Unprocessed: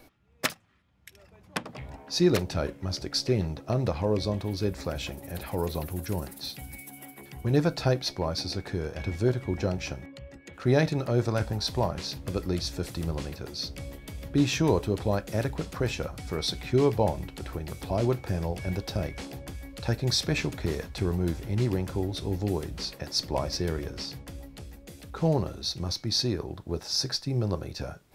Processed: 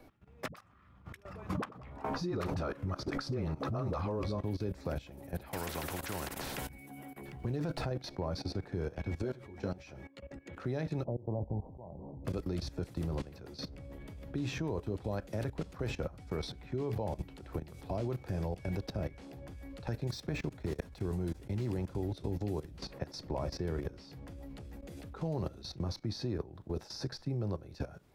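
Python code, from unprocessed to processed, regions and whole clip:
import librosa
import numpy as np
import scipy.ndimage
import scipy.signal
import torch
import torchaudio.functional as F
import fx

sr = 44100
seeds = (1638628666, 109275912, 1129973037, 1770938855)

y = fx.chain(x, sr, fx.peak_eq(hz=1200.0, db=10.5, octaves=0.51),
    fx.dispersion(late='highs', ms=67.0, hz=360.0),
    fx.pre_swell(db_per_s=69.0), at=(0.48, 4.43))
y = fx.chain(y, sr, fx.notch(hz=1200.0, q=9.9),
    fx.spectral_comp(ratio=4.0), at=(5.53, 6.69))
y = fx.chain(y, sr, fx.over_compress(threshold_db=-27.0, ratio=-1.0),
    fx.running_max(window=3), at=(7.28, 7.91))
y = fx.chain(y, sr, fx.low_shelf(hz=170.0, db=-9.0),
    fx.ensemble(), at=(9.22, 10.31))
y = fx.chain(y, sr, fx.cvsd(bps=64000),
    fx.steep_lowpass(hz=950.0, slope=72),
    fx.auto_swell(attack_ms=212.0), at=(11.04, 12.25))
y = fx.chain(y, sr, fx.high_shelf(hz=6500.0, db=8.5),
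    fx.level_steps(step_db=16),
    fx.resample_linear(factor=2), at=(20.07, 21.86))
y = fx.level_steps(y, sr, step_db=17)
y = fx.high_shelf(y, sr, hz=2300.0, db=-11.0)
y = fx.band_squash(y, sr, depth_pct=40)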